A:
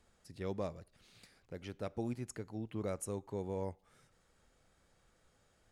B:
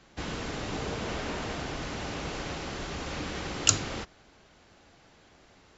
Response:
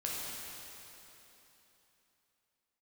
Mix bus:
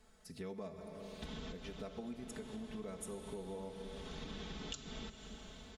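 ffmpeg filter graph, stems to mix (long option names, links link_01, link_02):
-filter_complex "[0:a]volume=-1dB,asplit=3[link_01][link_02][link_03];[link_02]volume=-7.5dB[link_04];[1:a]lowshelf=frequency=340:gain=10,acompressor=threshold=-34dB:ratio=2.5,equalizer=frequency=3500:width_type=o:width=0.31:gain=11.5,adelay=1050,volume=-5dB,asplit=2[link_05][link_06];[link_06]volume=-15.5dB[link_07];[link_03]apad=whole_len=300843[link_08];[link_05][link_08]sidechaincompress=threshold=-56dB:ratio=8:attack=16:release=444[link_09];[2:a]atrim=start_sample=2205[link_10];[link_04][link_07]amix=inputs=2:normalize=0[link_11];[link_11][link_10]afir=irnorm=-1:irlink=0[link_12];[link_01][link_09][link_12]amix=inputs=3:normalize=0,aecho=1:1:4.6:0.83,acompressor=threshold=-44dB:ratio=4"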